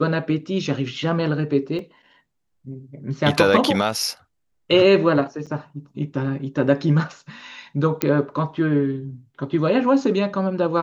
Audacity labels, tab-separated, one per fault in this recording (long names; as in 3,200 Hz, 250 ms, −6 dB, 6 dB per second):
1.790000	1.790000	drop-out 2.5 ms
5.460000	5.470000	drop-out 6.7 ms
8.020000	8.020000	click −3 dBFS